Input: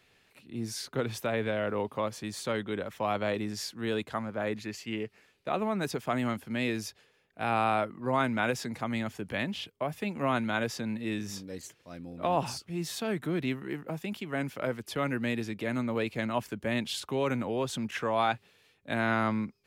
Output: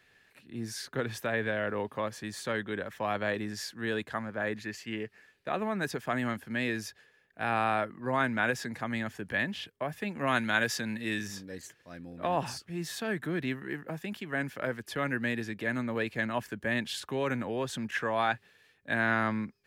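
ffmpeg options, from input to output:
-filter_complex "[0:a]asettb=1/sr,asplit=3[a][b][c];[a]atrim=end=10.274[d];[b]atrim=start=10.27:end=11.28,asetpts=PTS-STARTPTS,afade=t=in:d=0.004:c=qsin,afade=t=out:st=1.006:d=0.004:c=qsin,highshelf=f=2.1k:g=8.5[e];[c]atrim=start=11.276[f];[d][e]acrossfade=d=0.004:c1=hsin:c2=qsin[g];[g][f]acrossfade=d=0.004:c1=qsin:c2=hsin,equalizer=f=1.7k:t=o:w=0.29:g=11,volume=-2dB"

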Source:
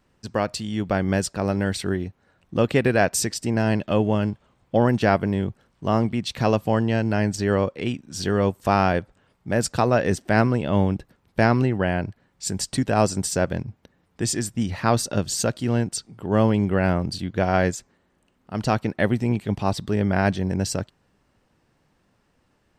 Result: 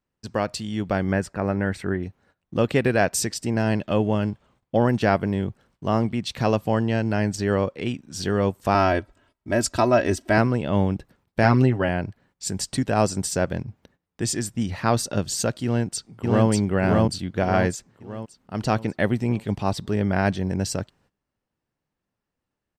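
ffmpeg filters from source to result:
-filter_complex "[0:a]asettb=1/sr,asplit=3[a][b][c];[a]atrim=end=1.124[d];[b]atrim=start=1.12:end=2.03,asetpts=PTS-STARTPTS,afade=t=in:d=0.004:c=qsin,afade=t=out:st=0.906:d=0.004:c=qsin,highshelf=f=2.7k:t=q:w=1.5:g=-9.5[e];[c]atrim=start=2.026[f];[d][e]acrossfade=d=0.004:c1=hsin:c2=qsin[g];[g][f]acrossfade=d=0.004:c1=qsin:c2=hsin,asettb=1/sr,asplit=3[h][i][j];[h]atrim=end=8.744[k];[i]atrim=start=8.74:end=10.38,asetpts=PTS-STARTPTS,afade=t=in:d=0.004:c=qsin,afade=t=out:st=1.636:d=0.004:c=qsin,aecho=1:1:3.1:0.74,atrim=end_sample=72324[l];[j]atrim=start=10.376[m];[k][l]acrossfade=d=0.004:c1=hsin:c2=qsin[n];[n][m]acrossfade=d=0.004:c1=qsin:c2=hsin,asettb=1/sr,asplit=3[o][p][q];[o]atrim=end=11.434[r];[p]atrim=start=11.43:end=11.89,asetpts=PTS-STARTPTS,afade=t=in:d=0.004:c=qsin,afade=t=out:st=0.456:d=0.004:c=qsin,aecho=1:1:7.5:0.65,atrim=end_sample=20286[s];[q]atrim=start=11.886[t];[r][s]acrossfade=d=0.004:c1=hsin:c2=qsin[u];[u][t]acrossfade=d=0.004:c1=qsin:c2=hsin,asplit=2[v][w];[w]afade=t=in:st=15.64:d=0.01,afade=t=out:st=16.48:d=0.01,aecho=0:1:590|1180|1770|2360|2950|3540:0.891251|0.401063|0.180478|0.0812152|0.0365469|0.0164461[x];[v][x]amix=inputs=2:normalize=0,agate=range=-17dB:threshold=-57dB:ratio=16:detection=peak,volume=-1dB"

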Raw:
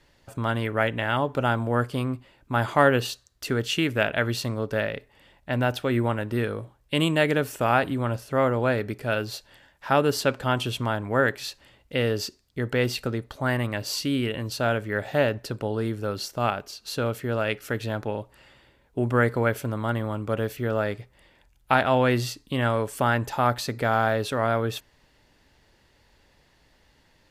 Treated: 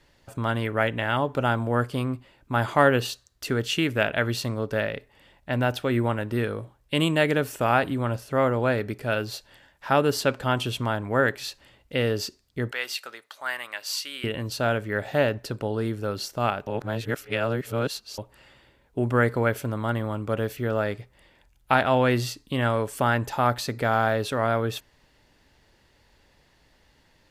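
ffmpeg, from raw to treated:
-filter_complex "[0:a]asettb=1/sr,asplit=3[a][b][c];[a]atrim=end=12.714[d];[b]atrim=start=12.71:end=14.24,asetpts=PTS-STARTPTS,afade=t=in:d=0.004:c=qsin,afade=t=out:st=1.526:d=0.004:c=qsin,highpass=1.1k[e];[c]atrim=start=14.236[f];[d][e]acrossfade=d=0.004:c1=hsin:c2=qsin[g];[g][f]acrossfade=d=0.004:c1=qsin:c2=hsin,asplit=3[h][i][j];[h]atrim=end=16.672[k];[i]atrim=start=16.668:end=18.182,asetpts=PTS-STARTPTS,areverse[l];[j]atrim=start=18.178[m];[k][l]acrossfade=d=0.004:c1=hsin:c2=hsin[n];[n][m]acrossfade=d=0.004:c1=hsin:c2=hsin"

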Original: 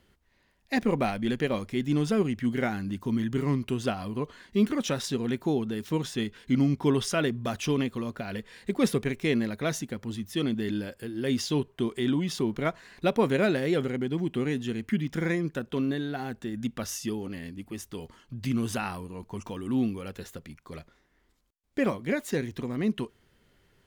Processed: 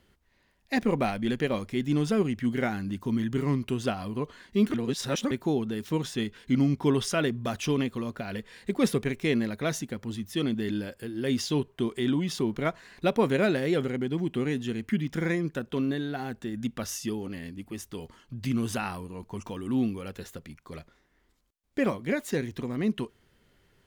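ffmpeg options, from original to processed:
-filter_complex "[0:a]asplit=3[a][b][c];[a]atrim=end=4.742[d];[b]atrim=start=4.738:end=5.312,asetpts=PTS-STARTPTS,areverse[e];[c]atrim=start=5.308[f];[d][e]acrossfade=d=0.004:c1=hsin:c2=hsin[g];[g][f]acrossfade=d=0.004:c1=hsin:c2=hsin"

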